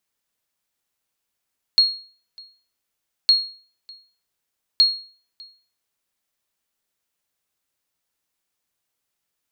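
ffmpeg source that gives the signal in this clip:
-f lavfi -i "aevalsrc='0.422*(sin(2*PI*4290*mod(t,1.51))*exp(-6.91*mod(t,1.51)/0.42)+0.0447*sin(2*PI*4290*max(mod(t,1.51)-0.6,0))*exp(-6.91*max(mod(t,1.51)-0.6,0)/0.42))':d=4.53:s=44100"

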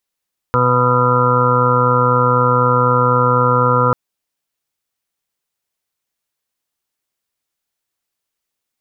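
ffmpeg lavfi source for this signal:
-f lavfi -i "aevalsrc='0.141*sin(2*PI*124*t)+0.0708*sin(2*PI*248*t)+0.0299*sin(2*PI*372*t)+0.15*sin(2*PI*496*t)+0.0158*sin(2*PI*620*t)+0.015*sin(2*PI*744*t)+0.0251*sin(2*PI*868*t)+0.126*sin(2*PI*992*t)+0.0282*sin(2*PI*1116*t)+0.141*sin(2*PI*1240*t)+0.119*sin(2*PI*1364*t)':d=3.39:s=44100"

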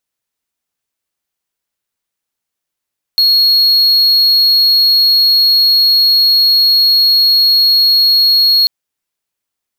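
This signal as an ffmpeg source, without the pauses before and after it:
-f lavfi -i "aevalsrc='0.596*(1-4*abs(mod(4310*t+0.25,1)-0.5))':d=5.49:s=44100"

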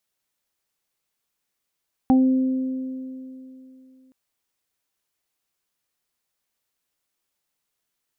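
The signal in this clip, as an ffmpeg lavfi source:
-f lavfi -i "aevalsrc='0.251*pow(10,-3*t/2.98)*sin(2*PI*260*t)+0.0355*pow(10,-3*t/3.01)*sin(2*PI*520*t)+0.119*pow(10,-3*t/0.22)*sin(2*PI*780*t)':d=2.02:s=44100"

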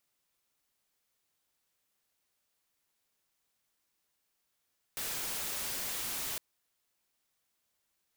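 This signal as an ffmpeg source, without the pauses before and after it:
-f lavfi -i "anoisesrc=c=white:a=0.0245:d=1.41:r=44100:seed=1"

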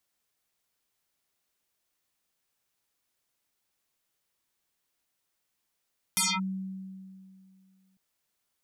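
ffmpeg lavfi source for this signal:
-f lavfi -i "aevalsrc='0.0794*pow(10,-3*t/2.41)*sin(2*PI*190*t+11*clip(1-t/0.23,0,1)*sin(2*PI*5.94*190*t))':d=1.8:s=44100"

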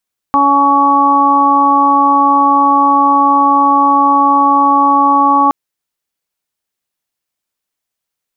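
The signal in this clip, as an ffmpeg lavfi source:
-f lavfi -i "aevalsrc='0.178*sin(2*PI*281*t)+0.0596*sin(2*PI*562*t)+0.282*sin(2*PI*843*t)+0.355*sin(2*PI*1124*t)':d=5.17:s=44100"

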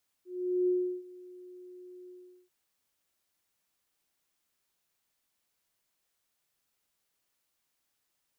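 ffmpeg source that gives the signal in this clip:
-f lavfi -i "aevalsrc='0.0668*sin(2*PI*362*t)':d=2.241:s=44100,afade=t=in:d=0.427,afade=t=out:st=0.427:d=0.347:silence=0.075,afade=t=out:st=1.84:d=0.401"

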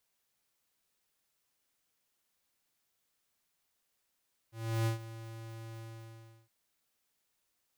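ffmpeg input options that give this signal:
-f lavfi -i "aevalsrc='0.0335*(2*lt(mod(113*t,1),0.5)-1)':d=1.967:s=44100,afade=t=in:d=0.341,afade=t=out:st=0.341:d=0.12:silence=0.158,afade=t=out:st=1.27:d=0.697"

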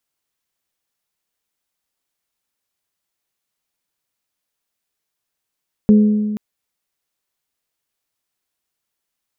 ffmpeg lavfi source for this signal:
-f lavfi -i "aevalsrc='0.531*pow(10,-3*t/1.81)*sin(2*PI*211*t)+0.141*pow(10,-3*t/1.114)*sin(2*PI*422*t)+0.0376*pow(10,-3*t/0.981)*sin(2*PI*506.4*t)':d=0.48:s=44100"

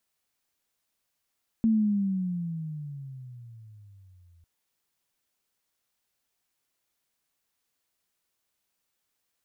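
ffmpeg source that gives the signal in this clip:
-f lavfi -i "aevalsrc='pow(10,(-18.5-37*t/2.8)/20)*sin(2*PI*227*2.8/(-17.5*log(2)/12)*(exp(-17.5*log(2)/12*t/2.8)-1))':d=2.8:s=44100"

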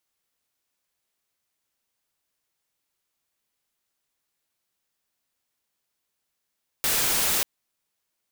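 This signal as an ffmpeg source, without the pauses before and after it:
-f lavfi -i "anoisesrc=c=white:a=0.116:d=0.59:r=44100:seed=1"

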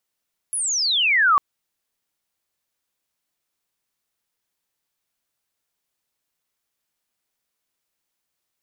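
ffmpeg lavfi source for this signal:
-f lavfi -i "aevalsrc='pow(10,(-22+10*t/0.85)/20)*sin(2*PI*11000*0.85/log(1100/11000)*(exp(log(1100/11000)*t/0.85)-1))':d=0.85:s=44100"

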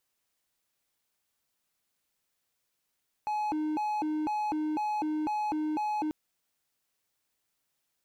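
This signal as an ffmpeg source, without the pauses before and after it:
-f lavfi -i "aevalsrc='0.0501*(1-4*abs(mod((576.5*t+269.5/2*(0.5-abs(mod(2*t,1)-0.5)))+0.25,1)-0.5))':d=2.84:s=44100"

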